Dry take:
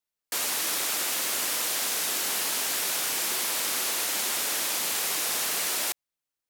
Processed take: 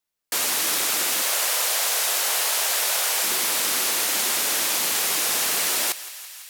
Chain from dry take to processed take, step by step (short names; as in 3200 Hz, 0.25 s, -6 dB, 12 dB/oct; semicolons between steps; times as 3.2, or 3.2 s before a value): 1.22–3.24 resonant low shelf 380 Hz -12.5 dB, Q 1.5; thinning echo 0.167 s, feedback 79%, high-pass 650 Hz, level -16.5 dB; gain +5 dB